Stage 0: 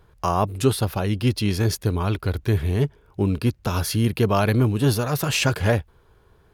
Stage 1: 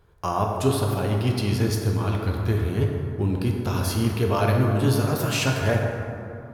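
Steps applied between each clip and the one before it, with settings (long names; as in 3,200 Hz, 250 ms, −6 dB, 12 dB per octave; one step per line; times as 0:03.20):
dense smooth reverb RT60 2.8 s, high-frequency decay 0.4×, DRR 0 dB
level −4.5 dB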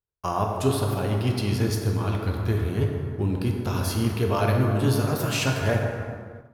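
downward expander −31 dBFS
in parallel at −10 dB: dead-zone distortion −41.5 dBFS
on the sum: level −3.5 dB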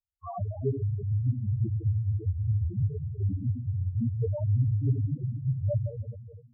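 low-pass filter 1,100 Hz 12 dB per octave
spectral peaks only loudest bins 2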